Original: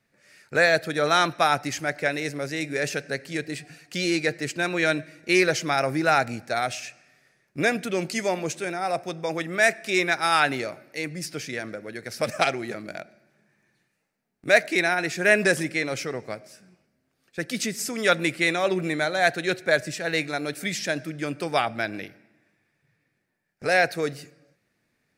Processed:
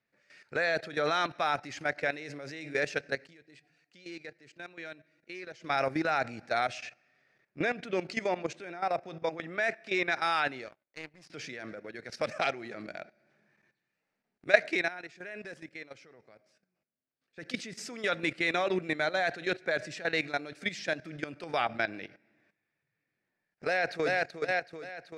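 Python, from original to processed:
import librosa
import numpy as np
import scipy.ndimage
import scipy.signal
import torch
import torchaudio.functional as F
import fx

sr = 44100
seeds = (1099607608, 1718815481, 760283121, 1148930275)

y = fx.high_shelf(x, sr, hz=5700.0, db=-8.5, at=(6.78, 10.1))
y = fx.power_curve(y, sr, exponent=2.0, at=(10.66, 11.3))
y = fx.echo_throw(y, sr, start_s=23.67, length_s=0.46, ms=380, feedback_pct=65, wet_db=-4.0)
y = fx.edit(y, sr, fx.fade_down_up(start_s=3.13, length_s=2.64, db=-15.5, fade_s=0.18),
    fx.fade_down_up(start_s=14.68, length_s=2.84, db=-13.5, fade_s=0.36), tone=tone)
y = scipy.signal.sosfilt(scipy.signal.butter(2, 4700.0, 'lowpass', fs=sr, output='sos'), y)
y = fx.low_shelf(y, sr, hz=220.0, db=-7.0)
y = fx.level_steps(y, sr, step_db=14)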